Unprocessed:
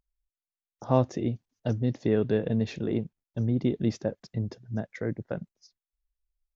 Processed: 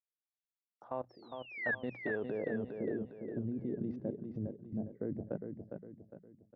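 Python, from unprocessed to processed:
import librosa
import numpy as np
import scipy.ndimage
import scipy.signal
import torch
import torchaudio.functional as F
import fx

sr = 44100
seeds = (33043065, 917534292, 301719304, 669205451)

y = fx.filter_sweep_bandpass(x, sr, from_hz=3400.0, to_hz=270.0, start_s=0.62, end_s=3.3, q=0.94)
y = fx.level_steps(y, sr, step_db=19)
y = fx.hum_notches(y, sr, base_hz=60, count=3)
y = fx.spec_paint(y, sr, seeds[0], shape='fall', start_s=1.09, length_s=0.66, low_hz=1600.0, high_hz=5600.0, level_db=-33.0)
y = fx.filter_lfo_lowpass(y, sr, shape='sine', hz=0.6, low_hz=540.0, high_hz=4200.0, q=0.82)
y = fx.echo_feedback(y, sr, ms=407, feedback_pct=41, wet_db=-6.0)
y = y * librosa.db_to_amplitude(1.5)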